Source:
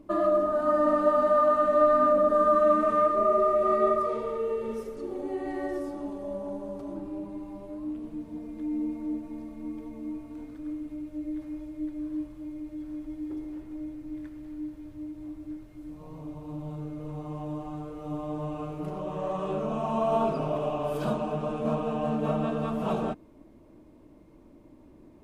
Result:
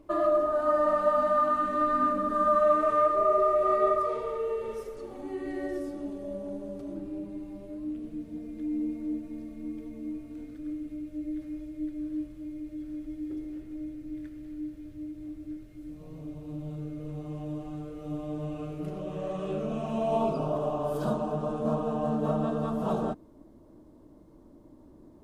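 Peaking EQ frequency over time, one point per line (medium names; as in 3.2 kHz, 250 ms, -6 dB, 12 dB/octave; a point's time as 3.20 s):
peaking EQ -13 dB 0.65 oct
0.69 s 210 Hz
1.70 s 640 Hz
2.28 s 640 Hz
2.78 s 220 Hz
4.93 s 220 Hz
5.54 s 950 Hz
19.92 s 950 Hz
20.56 s 2.4 kHz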